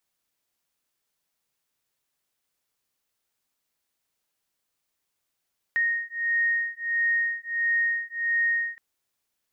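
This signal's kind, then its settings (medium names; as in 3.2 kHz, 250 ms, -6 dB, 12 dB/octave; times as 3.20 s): beating tones 1.86 kHz, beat 1.5 Hz, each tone -26 dBFS 3.02 s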